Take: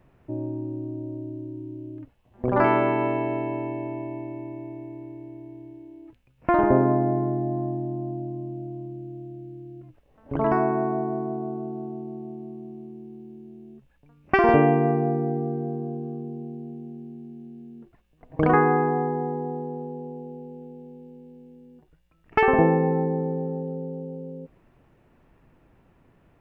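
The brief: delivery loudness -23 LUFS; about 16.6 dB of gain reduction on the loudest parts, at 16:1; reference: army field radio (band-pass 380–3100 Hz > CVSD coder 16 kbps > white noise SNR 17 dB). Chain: compression 16:1, threshold -30 dBFS; band-pass 380–3100 Hz; CVSD coder 16 kbps; white noise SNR 17 dB; trim +17.5 dB

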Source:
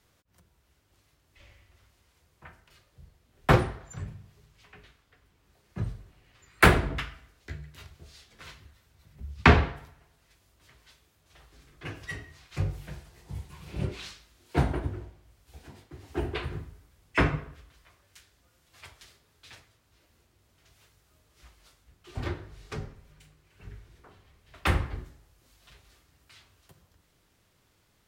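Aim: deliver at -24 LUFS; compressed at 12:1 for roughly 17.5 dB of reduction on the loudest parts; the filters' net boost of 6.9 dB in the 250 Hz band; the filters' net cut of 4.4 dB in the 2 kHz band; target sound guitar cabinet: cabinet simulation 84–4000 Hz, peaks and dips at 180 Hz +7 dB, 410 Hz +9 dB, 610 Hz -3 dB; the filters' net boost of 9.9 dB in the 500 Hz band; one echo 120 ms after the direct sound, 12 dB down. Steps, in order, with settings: peaking EQ 250 Hz +4 dB; peaking EQ 500 Hz +4.5 dB; peaking EQ 2 kHz -6 dB; compression 12:1, threshold -29 dBFS; cabinet simulation 84–4000 Hz, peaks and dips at 180 Hz +7 dB, 410 Hz +9 dB, 610 Hz -3 dB; delay 120 ms -12 dB; trim +13.5 dB

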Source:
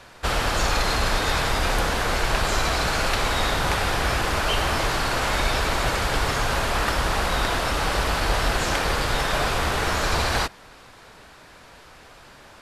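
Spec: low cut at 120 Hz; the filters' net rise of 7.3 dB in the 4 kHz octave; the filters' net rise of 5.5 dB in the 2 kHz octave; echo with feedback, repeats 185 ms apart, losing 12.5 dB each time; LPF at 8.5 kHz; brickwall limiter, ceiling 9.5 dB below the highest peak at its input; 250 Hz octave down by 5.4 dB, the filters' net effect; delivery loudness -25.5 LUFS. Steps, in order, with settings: high-pass 120 Hz; low-pass 8.5 kHz; peaking EQ 250 Hz -7.5 dB; peaking EQ 2 kHz +5.5 dB; peaking EQ 4 kHz +7.5 dB; peak limiter -13.5 dBFS; feedback delay 185 ms, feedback 24%, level -12.5 dB; trim -4.5 dB

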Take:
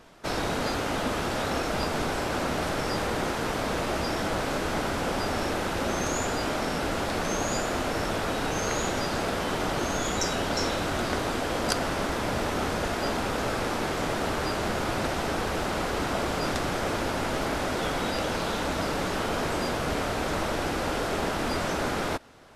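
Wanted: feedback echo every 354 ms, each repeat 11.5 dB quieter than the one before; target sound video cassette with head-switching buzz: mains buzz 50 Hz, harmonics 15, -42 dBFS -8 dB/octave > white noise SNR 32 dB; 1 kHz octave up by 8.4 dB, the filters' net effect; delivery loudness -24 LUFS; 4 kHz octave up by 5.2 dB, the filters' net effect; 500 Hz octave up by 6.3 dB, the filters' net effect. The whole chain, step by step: peaking EQ 500 Hz +5 dB; peaking EQ 1 kHz +9 dB; peaking EQ 4 kHz +6 dB; feedback delay 354 ms, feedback 27%, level -11.5 dB; mains buzz 50 Hz, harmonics 15, -42 dBFS -8 dB/octave; white noise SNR 32 dB; trim -1.5 dB

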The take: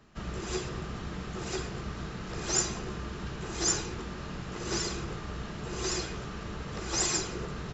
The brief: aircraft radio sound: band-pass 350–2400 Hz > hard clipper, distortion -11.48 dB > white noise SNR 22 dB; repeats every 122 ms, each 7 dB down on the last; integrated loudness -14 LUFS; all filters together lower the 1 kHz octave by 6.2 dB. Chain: band-pass 350–2400 Hz; peaking EQ 1 kHz -8 dB; feedback delay 122 ms, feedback 45%, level -7 dB; hard clipper -37.5 dBFS; white noise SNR 22 dB; trim +29 dB

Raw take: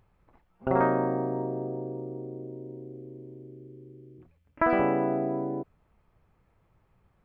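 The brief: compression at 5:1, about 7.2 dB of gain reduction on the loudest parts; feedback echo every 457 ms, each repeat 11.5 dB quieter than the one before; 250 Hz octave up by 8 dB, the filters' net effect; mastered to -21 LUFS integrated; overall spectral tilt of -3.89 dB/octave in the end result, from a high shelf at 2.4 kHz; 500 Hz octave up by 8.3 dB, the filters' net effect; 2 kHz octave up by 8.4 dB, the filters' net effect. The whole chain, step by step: peaking EQ 250 Hz +7 dB; peaking EQ 500 Hz +8 dB; peaking EQ 2 kHz +6 dB; treble shelf 2.4 kHz +8.5 dB; compression 5:1, threshold -20 dBFS; feedback delay 457 ms, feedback 27%, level -11.5 dB; trim +6 dB

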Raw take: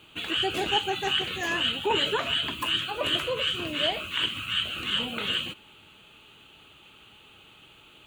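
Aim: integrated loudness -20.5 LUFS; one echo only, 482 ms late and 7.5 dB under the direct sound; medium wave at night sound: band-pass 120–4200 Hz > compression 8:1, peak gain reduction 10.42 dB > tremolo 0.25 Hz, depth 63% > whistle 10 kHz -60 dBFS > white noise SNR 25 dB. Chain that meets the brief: band-pass 120–4200 Hz; delay 482 ms -7.5 dB; compression 8:1, threshold -30 dBFS; tremolo 0.25 Hz, depth 63%; whistle 10 kHz -60 dBFS; white noise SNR 25 dB; trim +14.5 dB

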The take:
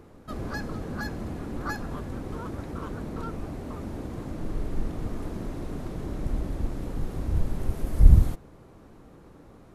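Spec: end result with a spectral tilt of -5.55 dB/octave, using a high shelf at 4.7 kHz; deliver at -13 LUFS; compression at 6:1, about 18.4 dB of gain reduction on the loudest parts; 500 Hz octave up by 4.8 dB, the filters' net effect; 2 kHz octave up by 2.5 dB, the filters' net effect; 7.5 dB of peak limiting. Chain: peaking EQ 500 Hz +6 dB; peaking EQ 2 kHz +4 dB; treble shelf 4.7 kHz -8.5 dB; compression 6:1, threshold -28 dBFS; trim +25 dB; peak limiter -2.5 dBFS

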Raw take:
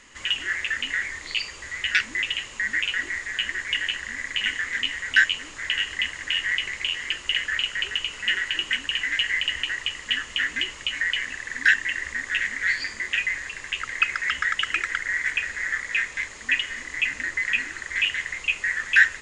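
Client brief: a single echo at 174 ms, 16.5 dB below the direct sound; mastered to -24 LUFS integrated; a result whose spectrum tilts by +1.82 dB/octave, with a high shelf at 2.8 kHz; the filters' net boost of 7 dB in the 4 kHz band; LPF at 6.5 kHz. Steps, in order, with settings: low-pass 6.5 kHz; treble shelf 2.8 kHz +9 dB; peaking EQ 4 kHz +4 dB; delay 174 ms -16.5 dB; trim -4.5 dB

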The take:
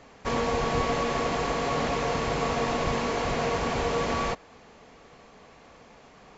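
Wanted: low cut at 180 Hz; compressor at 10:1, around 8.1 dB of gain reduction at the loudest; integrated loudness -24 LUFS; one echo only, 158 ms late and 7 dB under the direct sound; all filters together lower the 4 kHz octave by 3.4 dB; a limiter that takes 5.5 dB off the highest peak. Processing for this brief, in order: high-pass 180 Hz; peaking EQ 4 kHz -4.5 dB; compression 10:1, threshold -32 dBFS; peak limiter -28.5 dBFS; delay 158 ms -7 dB; trim +13 dB

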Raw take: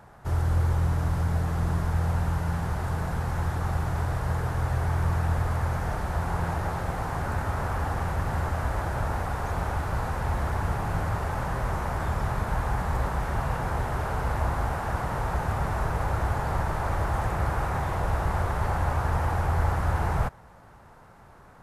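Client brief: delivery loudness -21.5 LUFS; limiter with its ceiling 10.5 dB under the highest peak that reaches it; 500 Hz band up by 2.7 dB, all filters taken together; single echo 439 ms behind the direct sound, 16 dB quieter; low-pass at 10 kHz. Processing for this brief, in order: low-pass 10 kHz; peaking EQ 500 Hz +3.5 dB; peak limiter -23.5 dBFS; delay 439 ms -16 dB; trim +11 dB

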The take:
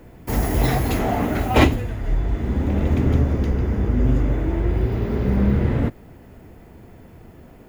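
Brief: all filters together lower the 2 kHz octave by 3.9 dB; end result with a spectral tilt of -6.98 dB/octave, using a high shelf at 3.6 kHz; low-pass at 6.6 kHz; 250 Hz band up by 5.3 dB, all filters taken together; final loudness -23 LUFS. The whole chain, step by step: low-pass 6.6 kHz; peaking EQ 250 Hz +6.5 dB; peaking EQ 2 kHz -3.5 dB; treble shelf 3.6 kHz -4.5 dB; trim -4 dB

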